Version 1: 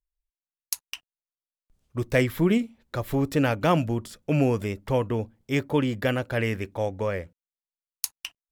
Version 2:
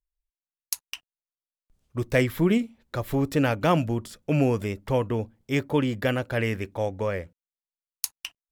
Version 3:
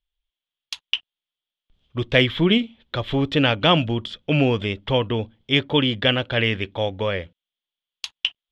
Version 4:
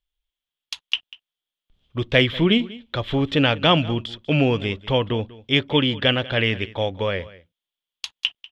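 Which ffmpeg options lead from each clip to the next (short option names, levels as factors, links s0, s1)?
-af anull
-af "lowpass=f=3300:t=q:w=7.7,volume=1.41"
-af "aecho=1:1:193:0.106"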